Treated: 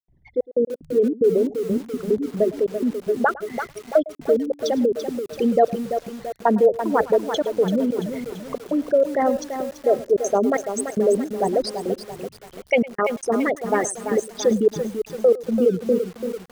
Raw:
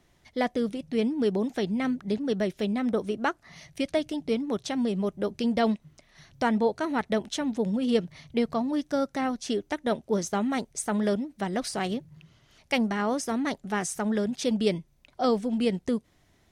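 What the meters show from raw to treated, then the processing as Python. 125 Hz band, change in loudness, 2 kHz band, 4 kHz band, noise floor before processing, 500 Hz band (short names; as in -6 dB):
+2.0 dB, +6.5 dB, +3.5 dB, -1.0 dB, -65 dBFS, +10.0 dB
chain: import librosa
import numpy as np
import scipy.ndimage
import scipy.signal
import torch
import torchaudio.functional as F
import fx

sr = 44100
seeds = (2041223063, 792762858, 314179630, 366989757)

p1 = fx.envelope_sharpen(x, sr, power=3.0)
p2 = fx.dynamic_eq(p1, sr, hz=600.0, q=1.1, threshold_db=-38.0, ratio=4.0, max_db=5)
p3 = fx.step_gate(p2, sr, bpm=186, pattern='.xxxx..x..xxxx', floor_db=-60.0, edge_ms=4.5)
p4 = p3 + fx.echo_single(p3, sr, ms=107, db=-19.5, dry=0)
p5 = fx.echo_crushed(p4, sr, ms=337, feedback_pct=55, bits=7, wet_db=-8.0)
y = p5 * librosa.db_to_amplitude(5.0)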